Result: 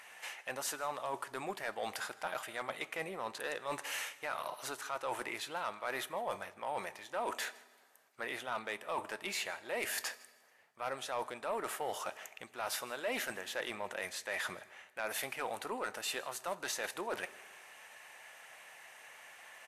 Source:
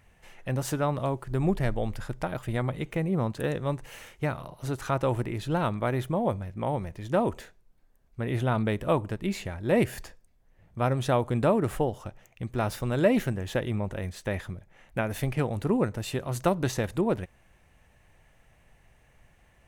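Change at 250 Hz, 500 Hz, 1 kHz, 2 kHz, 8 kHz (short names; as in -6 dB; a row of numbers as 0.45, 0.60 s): -21.5, -12.0, -6.0, -1.5, +1.0 dB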